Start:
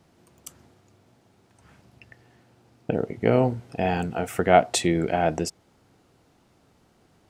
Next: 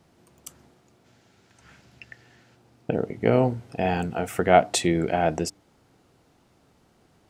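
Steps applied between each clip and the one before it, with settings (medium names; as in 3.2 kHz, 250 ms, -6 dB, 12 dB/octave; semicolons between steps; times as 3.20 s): de-hum 98.72 Hz, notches 3; time-frequency box 1.05–2.56 s, 1.3–7.8 kHz +6 dB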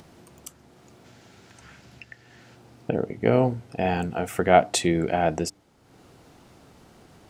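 upward compressor, threshold -42 dBFS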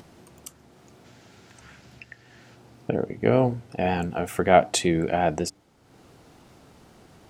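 vibrato 5.4 Hz 45 cents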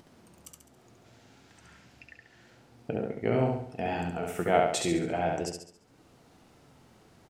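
flange 0.5 Hz, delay 3.1 ms, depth 6.4 ms, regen +72%; on a send: feedback delay 69 ms, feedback 44%, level -3 dB; on the sum: trim -3.5 dB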